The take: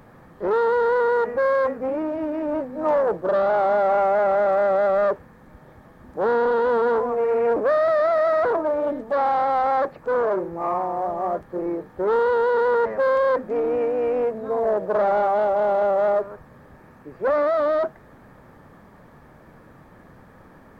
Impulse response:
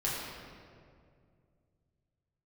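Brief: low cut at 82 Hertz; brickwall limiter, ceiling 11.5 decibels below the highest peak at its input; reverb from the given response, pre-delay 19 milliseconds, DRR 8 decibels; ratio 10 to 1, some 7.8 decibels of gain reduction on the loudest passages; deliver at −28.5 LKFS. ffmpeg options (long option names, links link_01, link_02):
-filter_complex "[0:a]highpass=82,acompressor=threshold=-25dB:ratio=10,alimiter=level_in=6dB:limit=-24dB:level=0:latency=1,volume=-6dB,asplit=2[link_01][link_02];[1:a]atrim=start_sample=2205,adelay=19[link_03];[link_02][link_03]afir=irnorm=-1:irlink=0,volume=-15dB[link_04];[link_01][link_04]amix=inputs=2:normalize=0,volume=7dB"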